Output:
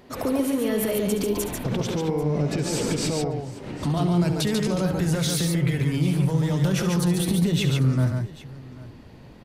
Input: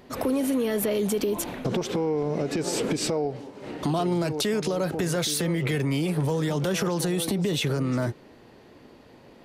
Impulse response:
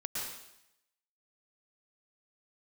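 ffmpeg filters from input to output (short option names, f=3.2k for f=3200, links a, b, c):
-af "asubboost=boost=4:cutoff=190,alimiter=limit=-17.5dB:level=0:latency=1:release=27,aecho=1:1:69|142|792:0.282|0.631|0.112"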